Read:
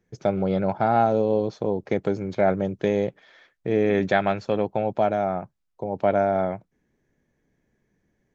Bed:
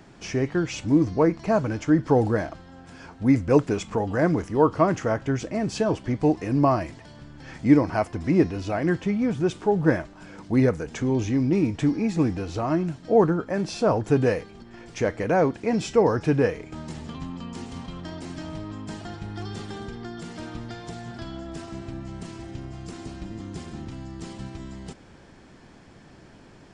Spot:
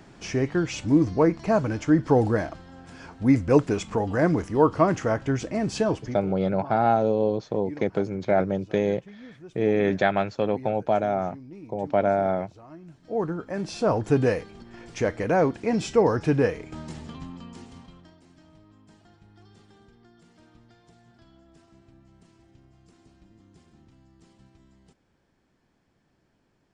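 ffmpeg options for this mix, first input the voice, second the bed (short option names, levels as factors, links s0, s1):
-filter_complex "[0:a]adelay=5900,volume=0.891[s0];[1:a]volume=11.2,afade=t=out:st=5.86:d=0.4:silence=0.0841395,afade=t=in:st=12.81:d=1.21:silence=0.0891251,afade=t=out:st=16.68:d=1.49:silence=0.112202[s1];[s0][s1]amix=inputs=2:normalize=0"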